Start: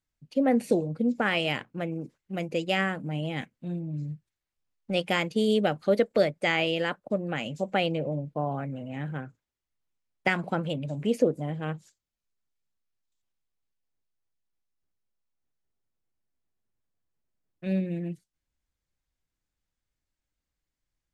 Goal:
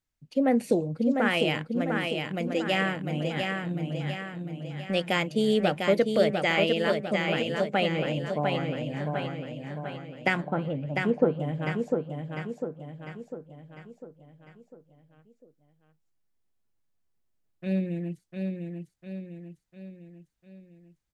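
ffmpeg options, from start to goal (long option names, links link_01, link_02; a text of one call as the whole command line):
ffmpeg -i in.wav -filter_complex "[0:a]asettb=1/sr,asplit=3[link_01][link_02][link_03];[link_01]atrim=end=10.424[link_04];[link_02]atrim=start=10.42:end=11.4,asetpts=PTS-STARTPTS,afade=type=in:duration=0.004:curve=qsin,afade=type=out:start_time=0.976:duration=0.004:curve=qsin,lowpass=1400[link_05];[link_03]atrim=start=11.396[link_06];[link_04][link_05]acrossfade=duration=0.004:curve1=hsin:curve2=qsin[link_07];[link_07][link_06]acrossfade=duration=0.004:curve1=qsin:curve2=hsin,aecho=1:1:700|1400|2100|2800|3500|4200:0.596|0.298|0.149|0.0745|0.0372|0.0186" out.wav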